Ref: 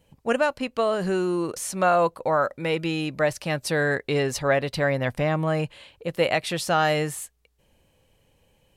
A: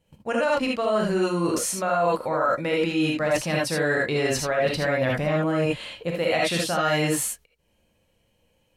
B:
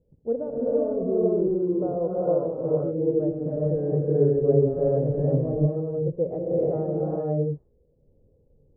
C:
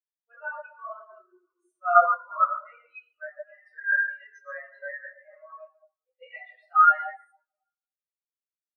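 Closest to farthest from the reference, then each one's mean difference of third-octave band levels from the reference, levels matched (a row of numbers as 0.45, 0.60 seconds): A, B, C; 6.5, 15.5, 20.5 decibels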